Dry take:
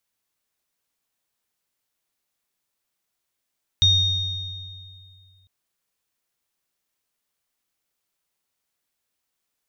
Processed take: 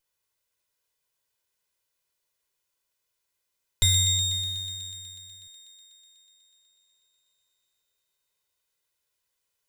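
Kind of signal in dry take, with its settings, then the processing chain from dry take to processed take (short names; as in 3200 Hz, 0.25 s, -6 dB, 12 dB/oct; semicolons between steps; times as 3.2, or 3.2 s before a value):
sine partials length 1.65 s, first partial 93.9 Hz, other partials 3700/5770 Hz, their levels 5.5/-11.5 dB, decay 2.55 s, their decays 2.04/1.28 s, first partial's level -18.5 dB
minimum comb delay 2 ms; on a send: thin delay 0.123 s, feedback 82%, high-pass 2200 Hz, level -9 dB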